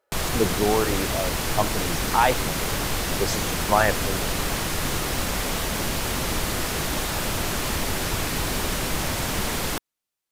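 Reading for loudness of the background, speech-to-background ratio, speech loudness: -25.5 LUFS, -0.5 dB, -26.0 LUFS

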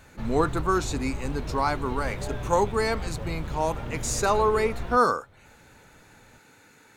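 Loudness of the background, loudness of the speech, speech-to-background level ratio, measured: -35.5 LUFS, -26.5 LUFS, 9.0 dB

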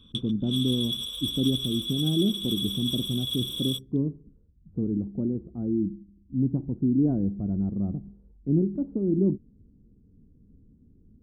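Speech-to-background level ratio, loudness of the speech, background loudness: 2.5 dB, -28.0 LUFS, -30.5 LUFS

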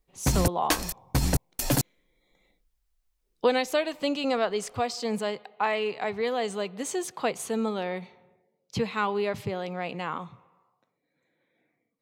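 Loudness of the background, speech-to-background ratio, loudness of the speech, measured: -28.0 LUFS, -1.5 dB, -29.5 LUFS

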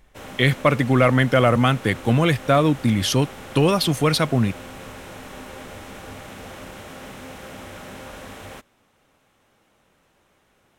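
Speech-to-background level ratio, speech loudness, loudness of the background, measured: 19.0 dB, -19.5 LUFS, -38.5 LUFS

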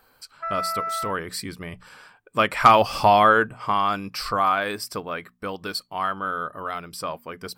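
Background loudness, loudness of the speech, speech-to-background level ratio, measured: -29.0 LUFS, -23.0 LUFS, 6.0 dB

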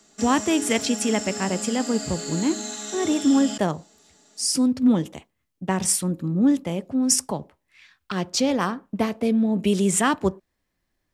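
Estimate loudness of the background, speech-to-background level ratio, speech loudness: -31.0 LUFS, 8.0 dB, -23.0 LUFS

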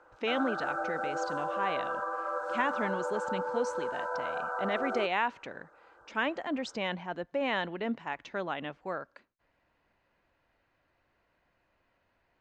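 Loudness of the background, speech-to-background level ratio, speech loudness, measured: -34.5 LUFS, 0.0 dB, -34.5 LUFS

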